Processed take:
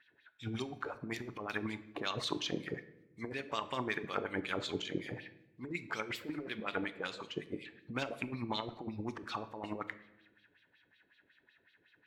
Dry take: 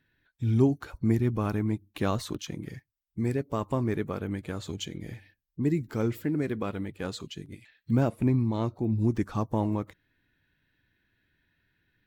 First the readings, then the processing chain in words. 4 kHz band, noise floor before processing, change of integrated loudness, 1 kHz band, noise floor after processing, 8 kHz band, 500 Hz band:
+2.5 dB, −82 dBFS, −10.5 dB, −3.5 dB, −73 dBFS, −6.0 dB, −9.0 dB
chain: auto-filter band-pass sine 5.4 Hz 410–4,000 Hz
compressor whose output falls as the input rises −46 dBFS, ratio −1
rectangular room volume 340 cubic metres, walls mixed, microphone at 0.31 metres
level +7 dB

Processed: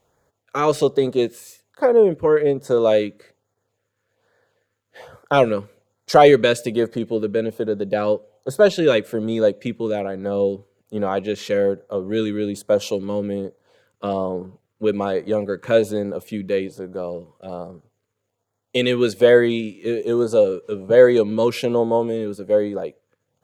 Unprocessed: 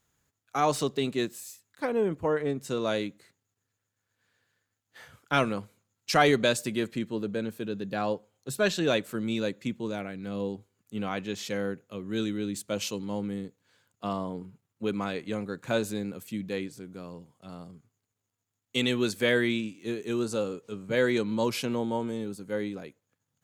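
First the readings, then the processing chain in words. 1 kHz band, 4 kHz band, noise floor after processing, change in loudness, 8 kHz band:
+8.5 dB, +3.5 dB, −76 dBFS, +10.5 dB, +1.0 dB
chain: dynamic equaliser 750 Hz, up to −5 dB, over −39 dBFS, Q 0.7
auto-filter notch sine 1.2 Hz 670–2,800 Hz
drawn EQ curve 270 Hz 0 dB, 520 Hz +14 dB, 1,200 Hz +5 dB, 7,500 Hz −6 dB
level +6.5 dB

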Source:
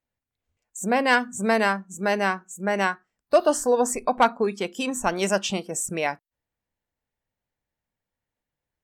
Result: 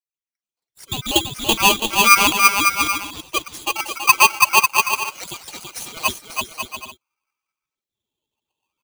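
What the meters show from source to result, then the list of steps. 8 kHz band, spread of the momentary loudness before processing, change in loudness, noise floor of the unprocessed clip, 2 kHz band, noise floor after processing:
+10.5 dB, 8 LU, +7.5 dB, below −85 dBFS, +8.5 dB, below −85 dBFS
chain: time-frequency cells dropped at random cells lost 38%
flat-topped bell 2,500 Hz −14 dB 1.1 octaves
notch filter 1,100 Hz, Q 9.3
phase shifter 0.94 Hz, delay 4.4 ms, feedback 62%
speech leveller 0.5 s
auto-filter high-pass saw down 0.43 Hz 430–5,200 Hz
bass and treble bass +5 dB, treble −14 dB
bouncing-ball delay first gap 330 ms, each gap 0.65×, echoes 5
boost into a limiter +6 dB
ring modulator with a square carrier 1,800 Hz
level −1 dB

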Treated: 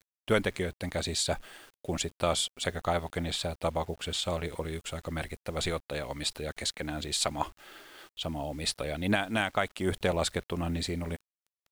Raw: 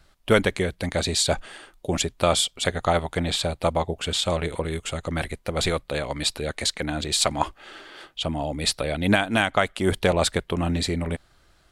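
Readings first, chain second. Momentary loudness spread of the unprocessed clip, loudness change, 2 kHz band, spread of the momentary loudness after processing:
9 LU, −7.5 dB, −7.5 dB, 9 LU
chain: tape wow and flutter 23 cents
bit-depth reduction 8 bits, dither none
level −7.5 dB

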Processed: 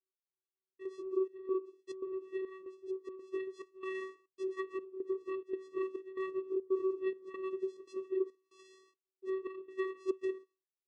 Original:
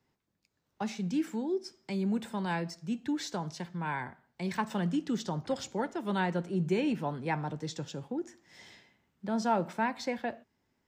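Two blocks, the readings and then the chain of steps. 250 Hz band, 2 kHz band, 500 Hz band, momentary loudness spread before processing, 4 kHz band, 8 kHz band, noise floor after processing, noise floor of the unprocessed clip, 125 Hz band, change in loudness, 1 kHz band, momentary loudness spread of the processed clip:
−9.5 dB, −11.5 dB, +0.5 dB, 9 LU, below −15 dB, below −20 dB, below −85 dBFS, −80 dBFS, below −35 dB, −5.5 dB, −15.5 dB, 9 LU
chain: partials spread apart or drawn together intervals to 113%
noise gate with hold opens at −55 dBFS
treble cut that deepens with the level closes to 1,100 Hz, closed at −31 dBFS
downward compressor, threshold −34 dBFS, peak gain reduction 9 dB
channel vocoder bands 4, square 379 Hz
gate pattern "x..xxxx.xxx" 141 BPM −12 dB
phaser whose notches keep moving one way rising 1.9 Hz
level +4.5 dB

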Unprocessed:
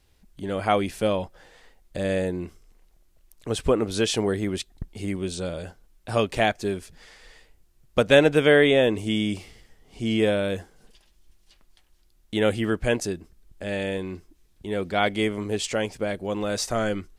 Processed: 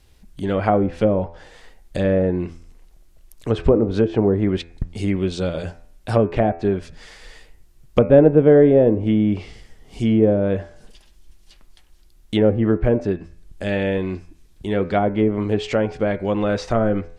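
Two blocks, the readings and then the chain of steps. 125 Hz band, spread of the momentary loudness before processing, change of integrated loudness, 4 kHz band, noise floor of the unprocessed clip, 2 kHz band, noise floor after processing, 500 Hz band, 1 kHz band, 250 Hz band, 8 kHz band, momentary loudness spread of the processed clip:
+9.0 dB, 18 LU, +5.0 dB, −6.5 dB, −61 dBFS, −4.5 dB, −52 dBFS, +5.5 dB, +2.5 dB, +7.5 dB, below −10 dB, 16 LU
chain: treble cut that deepens with the level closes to 630 Hz, closed at −19 dBFS
low-shelf EQ 190 Hz +3.5 dB
hum removal 84.28 Hz, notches 31
level +6.5 dB

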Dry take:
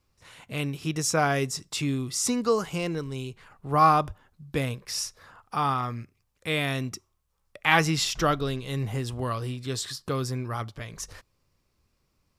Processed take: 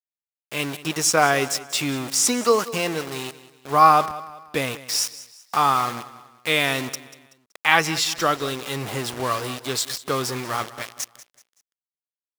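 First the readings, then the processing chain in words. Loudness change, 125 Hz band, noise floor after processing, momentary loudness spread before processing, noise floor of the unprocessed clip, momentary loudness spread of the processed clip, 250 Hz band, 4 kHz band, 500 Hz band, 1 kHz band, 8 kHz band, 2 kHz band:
+5.0 dB, −4.0 dB, below −85 dBFS, 15 LU, −74 dBFS, 14 LU, +1.0 dB, +7.0 dB, +5.0 dB, +6.0 dB, +8.0 dB, +6.0 dB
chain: centre clipping without the shift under −34 dBFS
high-pass filter 470 Hz 6 dB per octave
automatic gain control gain up to 8.5 dB
on a send: repeating echo 189 ms, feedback 39%, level −17 dB

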